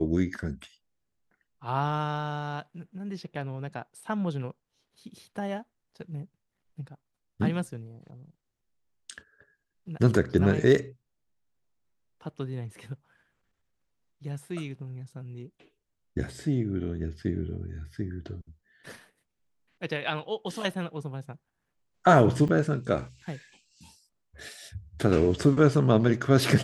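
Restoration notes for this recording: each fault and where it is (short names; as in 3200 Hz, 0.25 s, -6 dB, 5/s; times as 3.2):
22.48–22.49 gap 7.7 ms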